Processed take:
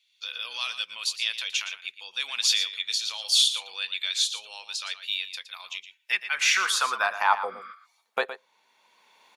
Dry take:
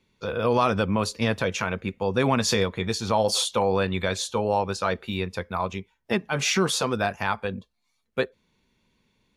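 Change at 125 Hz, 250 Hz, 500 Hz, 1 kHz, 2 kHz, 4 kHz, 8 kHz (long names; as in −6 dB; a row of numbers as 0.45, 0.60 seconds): below −40 dB, below −30 dB, −15.5 dB, −3.5 dB, +2.0 dB, +6.0 dB, +2.0 dB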